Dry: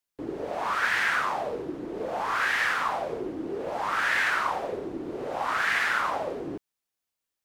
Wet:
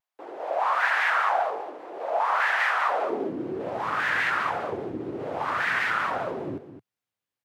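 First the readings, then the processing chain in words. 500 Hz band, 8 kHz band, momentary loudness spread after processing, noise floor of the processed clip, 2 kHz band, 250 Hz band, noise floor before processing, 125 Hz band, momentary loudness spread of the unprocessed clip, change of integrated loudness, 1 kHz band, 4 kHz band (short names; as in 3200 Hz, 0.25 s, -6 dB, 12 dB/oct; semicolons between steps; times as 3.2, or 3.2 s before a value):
+2.0 dB, -6.5 dB, 13 LU, under -85 dBFS, +0.5 dB, +0.5 dB, under -85 dBFS, +3.0 dB, 11 LU, +1.5 dB, +3.0 dB, -2.0 dB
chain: tone controls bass 0 dB, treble -8 dB; high-pass sweep 720 Hz -> 110 Hz, 2.82–3.47; echo 0.215 s -11.5 dB; shaped vibrato square 5 Hz, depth 100 cents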